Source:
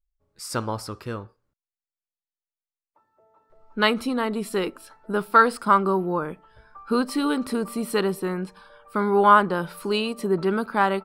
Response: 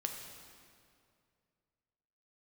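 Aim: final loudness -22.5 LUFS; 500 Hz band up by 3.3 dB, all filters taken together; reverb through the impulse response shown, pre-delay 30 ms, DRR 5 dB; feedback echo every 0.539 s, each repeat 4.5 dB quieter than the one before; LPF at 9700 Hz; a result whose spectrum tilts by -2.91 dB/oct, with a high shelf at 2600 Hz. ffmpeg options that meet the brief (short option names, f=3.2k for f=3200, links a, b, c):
-filter_complex "[0:a]lowpass=9.7k,equalizer=f=500:t=o:g=4,highshelf=f=2.6k:g=7,aecho=1:1:539|1078|1617|2156|2695|3234|3773|4312|4851:0.596|0.357|0.214|0.129|0.0772|0.0463|0.0278|0.0167|0.01,asplit=2[a][b];[1:a]atrim=start_sample=2205,adelay=30[c];[b][c]afir=irnorm=-1:irlink=0,volume=-5.5dB[d];[a][d]amix=inputs=2:normalize=0,volume=-4dB"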